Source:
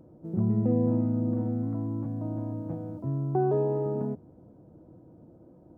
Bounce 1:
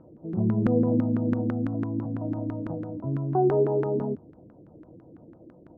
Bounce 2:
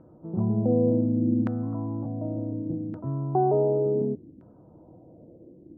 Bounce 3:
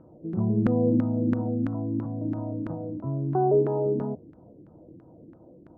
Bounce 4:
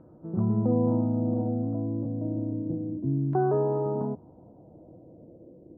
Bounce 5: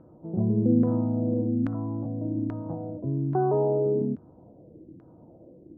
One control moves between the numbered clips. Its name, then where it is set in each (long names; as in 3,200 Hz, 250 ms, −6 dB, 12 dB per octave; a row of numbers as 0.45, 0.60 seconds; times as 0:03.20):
auto-filter low-pass, speed: 6, 0.68, 3, 0.3, 1.2 Hertz